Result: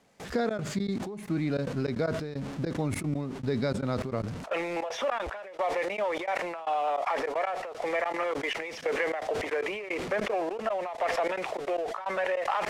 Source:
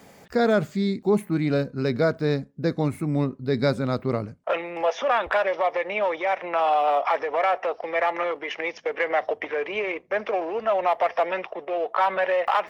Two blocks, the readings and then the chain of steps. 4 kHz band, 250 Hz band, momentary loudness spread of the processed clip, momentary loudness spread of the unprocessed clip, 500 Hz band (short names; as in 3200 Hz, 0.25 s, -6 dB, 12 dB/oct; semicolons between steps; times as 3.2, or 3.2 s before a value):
-3.5 dB, -5.5 dB, 4 LU, 6 LU, -6.5 dB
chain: zero-crossing step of -37 dBFS; LPF 8700 Hz 12 dB/oct; compressor 4:1, threshold -27 dBFS, peak gain reduction 10 dB; step gate "..xxx.xx.x." 153 bpm -24 dB; sustainer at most 41 dB/s